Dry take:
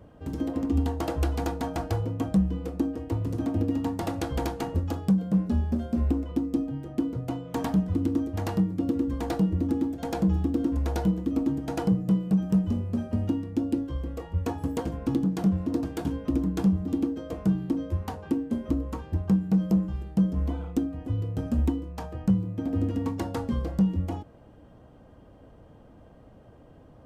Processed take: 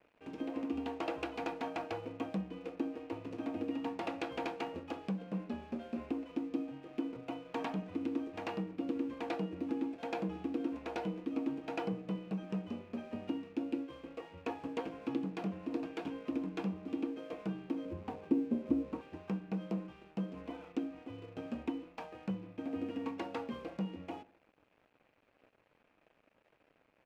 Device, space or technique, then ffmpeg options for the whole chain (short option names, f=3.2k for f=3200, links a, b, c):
pocket radio on a weak battery: -filter_complex "[0:a]asettb=1/sr,asplit=3[a][b][c];[a]atrim=end=17.854[d];[b]atrim=start=17.85:end=19.01,asetpts=PTS-STARTPTS,afade=t=in:d=0.004:c=qsin,afade=t=out:st=1.156:d=0.004:c=qsin,tiltshelf=f=670:g=9.5[e];[c]atrim=start=19.006[f];[d][e]acrossfade=d=0.004:c1=hsin:c2=qsin[g];[g][f]acrossfade=d=0.004:c1=qsin:c2=hsin,highpass=320,lowpass=3.8k,aeval=exprs='sgn(val(0))*max(abs(val(0))-0.00158,0)':c=same,equalizer=f=2.5k:t=o:w=0.41:g=10,asplit=2[h][i];[i]adelay=66,lowpass=f=1.2k:p=1,volume=-18dB,asplit=2[j][k];[k]adelay=66,lowpass=f=1.2k:p=1,volume=0.52,asplit=2[l][m];[m]adelay=66,lowpass=f=1.2k:p=1,volume=0.52,asplit=2[n][o];[o]adelay=66,lowpass=f=1.2k:p=1,volume=0.52[p];[h][j][l][n][p]amix=inputs=5:normalize=0,volume=-5.5dB"